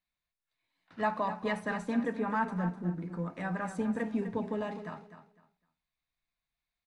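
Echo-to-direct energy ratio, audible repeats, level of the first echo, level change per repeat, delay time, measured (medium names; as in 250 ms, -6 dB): -11.0 dB, 2, -11.0 dB, -13.0 dB, 253 ms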